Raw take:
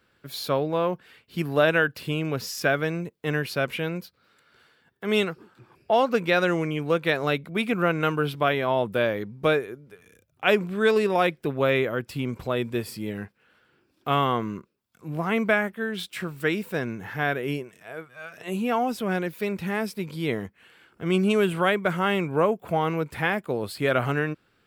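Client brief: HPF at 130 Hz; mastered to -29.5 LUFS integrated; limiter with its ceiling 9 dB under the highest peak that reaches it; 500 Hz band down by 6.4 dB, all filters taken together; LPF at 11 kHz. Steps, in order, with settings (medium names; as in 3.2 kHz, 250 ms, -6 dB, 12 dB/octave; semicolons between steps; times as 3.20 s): high-pass 130 Hz; low-pass 11 kHz; peaking EQ 500 Hz -8 dB; trim +0.5 dB; peak limiter -15.5 dBFS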